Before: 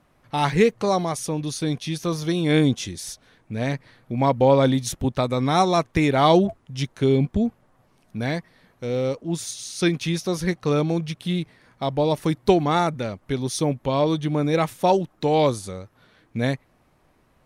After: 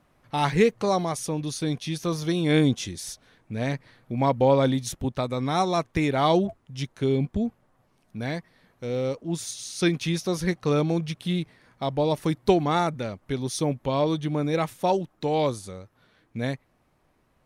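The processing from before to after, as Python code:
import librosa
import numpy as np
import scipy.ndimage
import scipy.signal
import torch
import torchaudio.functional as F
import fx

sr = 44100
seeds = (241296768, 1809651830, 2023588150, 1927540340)

y = fx.rider(x, sr, range_db=3, speed_s=2.0)
y = y * librosa.db_to_amplitude(-3.5)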